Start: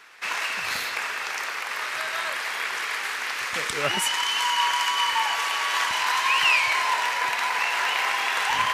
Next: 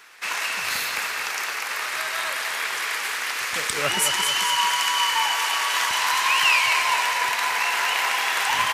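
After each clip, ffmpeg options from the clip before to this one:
ffmpeg -i in.wav -af "highshelf=frequency=6700:gain=9,aecho=1:1:223|446|669|892|1115|1338:0.422|0.223|0.118|0.0628|0.0333|0.0176" out.wav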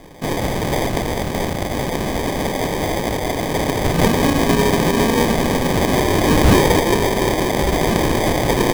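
ffmpeg -i in.wav -filter_complex "[0:a]tiltshelf=frequency=690:gain=-6,acrossover=split=250|1100[link_01][link_02][link_03];[link_02]acompressor=mode=upward:threshold=-42dB:ratio=2.5[link_04];[link_01][link_04][link_03]amix=inputs=3:normalize=0,acrusher=samples=32:mix=1:aa=0.000001,volume=2dB" out.wav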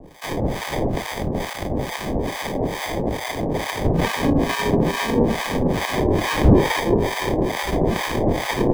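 ffmpeg -i in.wav -filter_complex "[0:a]acrossover=split=410|1600|2900[link_01][link_02][link_03][link_04];[link_04]asoftclip=type=tanh:threshold=-25.5dB[link_05];[link_01][link_02][link_03][link_05]amix=inputs=4:normalize=0,acrossover=split=780[link_06][link_07];[link_06]aeval=exprs='val(0)*(1-1/2+1/2*cos(2*PI*2.3*n/s))':channel_layout=same[link_08];[link_07]aeval=exprs='val(0)*(1-1/2-1/2*cos(2*PI*2.3*n/s))':channel_layout=same[link_09];[link_08][link_09]amix=inputs=2:normalize=0,volume=1dB" out.wav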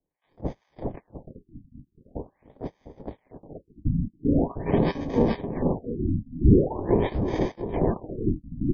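ffmpeg -i in.wav -af "agate=range=-39dB:threshold=-19dB:ratio=16:detection=peak,aecho=1:1:703:0.282,afftfilt=real='re*lt(b*sr/1024,290*pow(7100/290,0.5+0.5*sin(2*PI*0.44*pts/sr)))':imag='im*lt(b*sr/1024,290*pow(7100/290,0.5+0.5*sin(2*PI*0.44*pts/sr)))':win_size=1024:overlap=0.75,volume=-3dB" out.wav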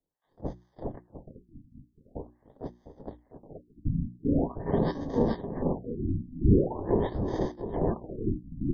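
ffmpeg -i in.wav -af "asuperstop=centerf=2500:order=4:qfactor=1.6,bandreject=frequency=60:width_type=h:width=6,bandreject=frequency=120:width_type=h:width=6,bandreject=frequency=180:width_type=h:width=6,bandreject=frequency=240:width_type=h:width=6,bandreject=frequency=300:width_type=h:width=6,bandreject=frequency=360:width_type=h:width=6,volume=-3.5dB" out.wav

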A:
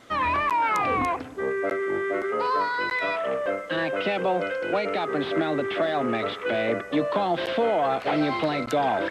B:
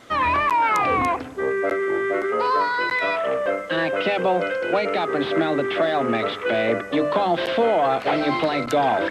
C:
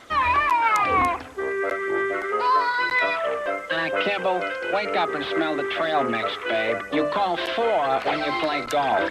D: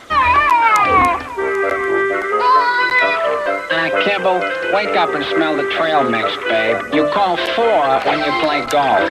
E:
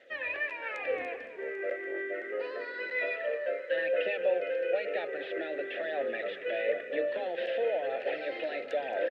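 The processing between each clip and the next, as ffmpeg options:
ffmpeg -i in.wav -af "bandreject=frequency=50:width_type=h:width=6,bandreject=frequency=100:width_type=h:width=6,bandreject=frequency=150:width_type=h:width=6,bandreject=frequency=200:width_type=h:width=6,bandreject=frequency=250:width_type=h:width=6,bandreject=frequency=300:width_type=h:width=6,volume=4dB" out.wav
ffmpeg -i in.wav -af "equalizer=frequency=125:width_type=o:width=1:gain=-8,equalizer=frequency=250:width_type=o:width=1:gain=-5,equalizer=frequency=500:width_type=o:width=1:gain=-4,aphaser=in_gain=1:out_gain=1:delay=3:decay=0.35:speed=1:type=sinusoidal" out.wav
ffmpeg -i in.wav -af "aecho=1:1:791:0.141,volume=8dB" out.wav
ffmpeg -i in.wav -filter_complex "[0:a]asplit=3[link_01][link_02][link_03];[link_01]bandpass=frequency=530:width_type=q:width=8,volume=0dB[link_04];[link_02]bandpass=frequency=1840:width_type=q:width=8,volume=-6dB[link_05];[link_03]bandpass=frequency=2480:width_type=q:width=8,volume=-9dB[link_06];[link_04][link_05][link_06]amix=inputs=3:normalize=0,asplit=5[link_07][link_08][link_09][link_10][link_11];[link_08]adelay=223,afreqshift=-44,volume=-14dB[link_12];[link_09]adelay=446,afreqshift=-88,volume=-20.7dB[link_13];[link_10]adelay=669,afreqshift=-132,volume=-27.5dB[link_14];[link_11]adelay=892,afreqshift=-176,volume=-34.2dB[link_15];[link_07][link_12][link_13][link_14][link_15]amix=inputs=5:normalize=0,volume=-7dB" out.wav

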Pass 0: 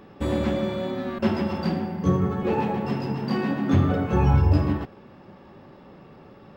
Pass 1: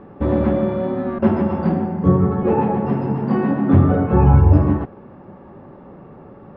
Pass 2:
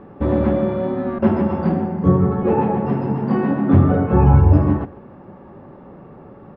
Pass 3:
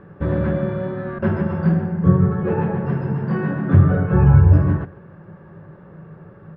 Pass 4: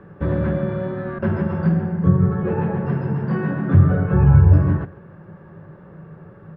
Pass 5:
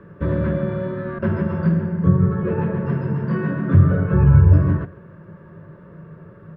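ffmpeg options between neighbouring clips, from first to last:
ffmpeg -i in.wav -af "lowpass=1300,volume=7dB" out.wav
ffmpeg -i in.wav -af "aecho=1:1:137:0.0891" out.wav
ffmpeg -i in.wav -af "equalizer=frequency=100:width_type=o:width=0.33:gain=7,equalizer=frequency=160:width_type=o:width=0.33:gain=12,equalizer=frequency=250:width_type=o:width=0.33:gain=-12,equalizer=frequency=800:width_type=o:width=0.33:gain=-7,equalizer=frequency=1600:width_type=o:width=0.33:gain=10,volume=-3.5dB" out.wav
ffmpeg -i in.wav -filter_complex "[0:a]acrossover=split=180[link_01][link_02];[link_02]acompressor=threshold=-20dB:ratio=4[link_03];[link_01][link_03]amix=inputs=2:normalize=0" out.wav
ffmpeg -i in.wav -af "asuperstop=centerf=790:order=8:qfactor=5.1" out.wav

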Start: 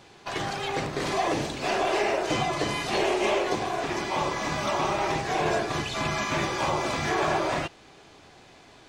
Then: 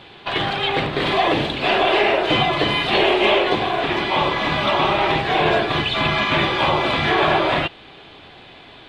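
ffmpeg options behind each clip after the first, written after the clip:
ffmpeg -i in.wav -af "highshelf=frequency=4600:width_type=q:width=3:gain=-10.5,volume=7.5dB" out.wav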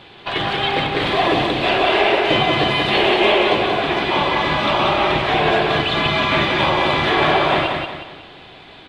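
ffmpeg -i in.wav -af "aecho=1:1:183|366|549|732|915:0.631|0.246|0.096|0.0374|0.0146" out.wav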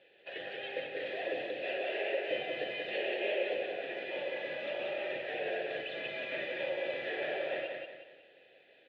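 ffmpeg -i in.wav -filter_complex "[0:a]asplit=3[link_01][link_02][link_03];[link_01]bandpass=frequency=530:width_type=q:width=8,volume=0dB[link_04];[link_02]bandpass=frequency=1840:width_type=q:width=8,volume=-6dB[link_05];[link_03]bandpass=frequency=2480:width_type=q:width=8,volume=-9dB[link_06];[link_04][link_05][link_06]amix=inputs=3:normalize=0,volume=-8dB" out.wav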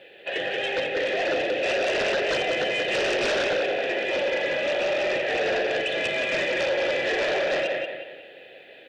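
ffmpeg -i in.wav -af "aeval=exprs='0.0841*sin(PI/2*3.16*val(0)/0.0841)':channel_layout=same,volume=1dB" out.wav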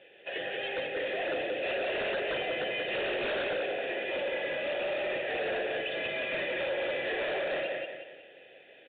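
ffmpeg -i in.wav -af "aresample=8000,aresample=44100,volume=-7.5dB" out.wav

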